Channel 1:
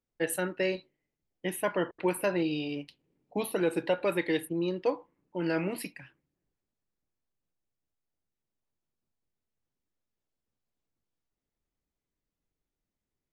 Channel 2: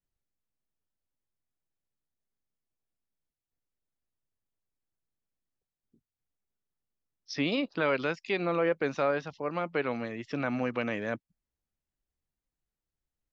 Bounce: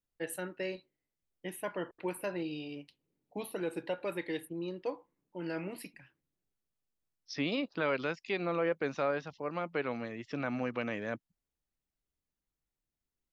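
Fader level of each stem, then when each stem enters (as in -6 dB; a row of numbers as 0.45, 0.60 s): -8.0, -4.0 dB; 0.00, 0.00 s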